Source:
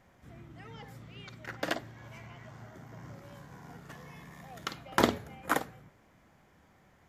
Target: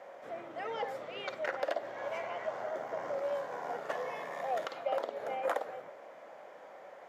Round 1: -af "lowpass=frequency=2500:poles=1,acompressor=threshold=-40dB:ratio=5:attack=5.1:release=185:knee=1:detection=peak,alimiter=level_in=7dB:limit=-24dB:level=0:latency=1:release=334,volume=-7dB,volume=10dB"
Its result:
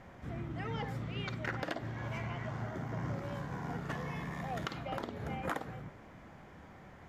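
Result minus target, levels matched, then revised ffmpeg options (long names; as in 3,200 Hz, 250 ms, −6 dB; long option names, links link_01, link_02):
500 Hz band −6.5 dB
-af "lowpass=frequency=2500:poles=1,acompressor=threshold=-40dB:ratio=5:attack=5.1:release=185:knee=1:detection=peak,highpass=frequency=560:width_type=q:width=4,alimiter=level_in=7dB:limit=-24dB:level=0:latency=1:release=334,volume=-7dB,volume=10dB"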